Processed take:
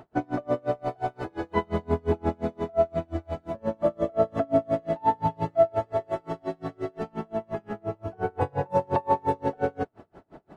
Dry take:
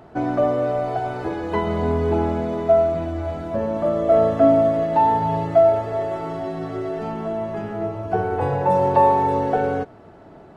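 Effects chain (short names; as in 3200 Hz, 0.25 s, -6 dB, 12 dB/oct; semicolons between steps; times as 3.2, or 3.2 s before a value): in parallel at +2 dB: limiter -12 dBFS, peak gain reduction 7.5 dB; on the sum: dB-linear tremolo 5.7 Hz, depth 35 dB; gain -6.5 dB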